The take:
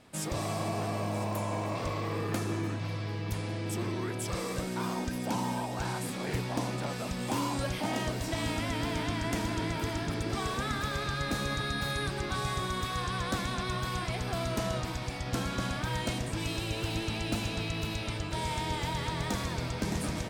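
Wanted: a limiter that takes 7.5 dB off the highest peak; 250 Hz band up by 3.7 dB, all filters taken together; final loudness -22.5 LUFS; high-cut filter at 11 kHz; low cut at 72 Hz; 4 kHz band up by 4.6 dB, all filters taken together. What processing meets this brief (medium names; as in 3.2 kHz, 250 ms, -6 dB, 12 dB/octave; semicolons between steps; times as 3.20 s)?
high-pass 72 Hz; low-pass 11 kHz; peaking EQ 250 Hz +5 dB; peaking EQ 4 kHz +5.5 dB; trim +10.5 dB; peak limiter -13.5 dBFS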